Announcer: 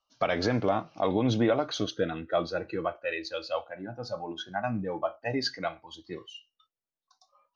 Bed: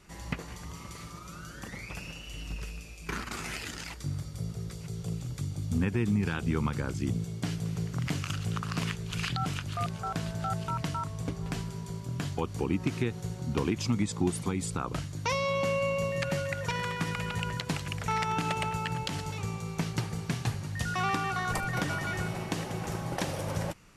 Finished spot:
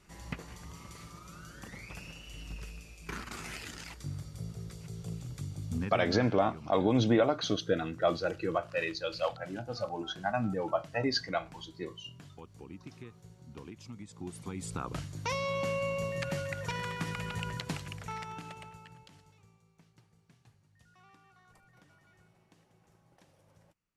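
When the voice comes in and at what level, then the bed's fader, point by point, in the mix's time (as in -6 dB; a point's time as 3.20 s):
5.70 s, -0.5 dB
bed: 5.75 s -5 dB
6.32 s -18 dB
14.05 s -18 dB
14.77 s -4 dB
17.67 s -4 dB
19.73 s -31.5 dB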